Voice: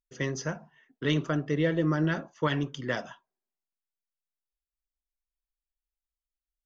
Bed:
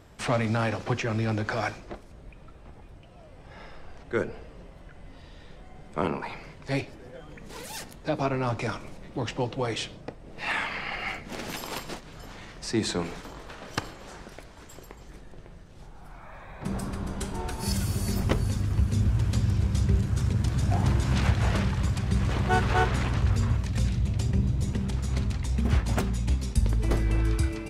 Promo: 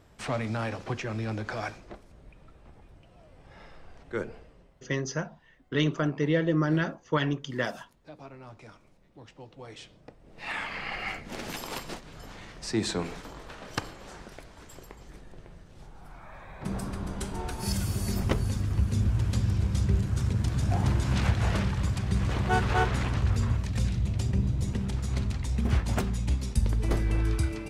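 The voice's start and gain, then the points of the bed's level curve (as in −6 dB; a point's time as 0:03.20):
4.70 s, +1.0 dB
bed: 0:04.33 −5 dB
0:04.98 −19 dB
0:09.38 −19 dB
0:10.86 −1.5 dB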